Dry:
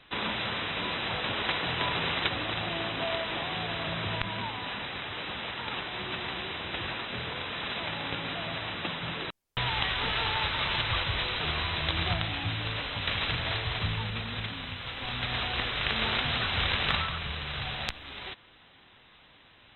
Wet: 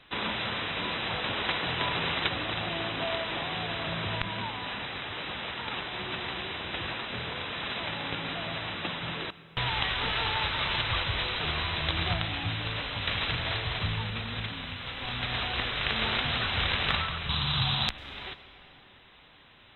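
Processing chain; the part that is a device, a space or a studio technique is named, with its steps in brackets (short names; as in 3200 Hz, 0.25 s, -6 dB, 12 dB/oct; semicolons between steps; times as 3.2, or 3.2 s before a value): compressed reverb return (on a send at -5 dB: reverb RT60 1.9 s, pre-delay 91 ms + compressor 6:1, threshold -44 dBFS, peak gain reduction 18 dB); 17.29–17.89 on the sum: graphic EQ 125/250/500/1000/2000/4000 Hz +11/+5/-6/+9/-4/+12 dB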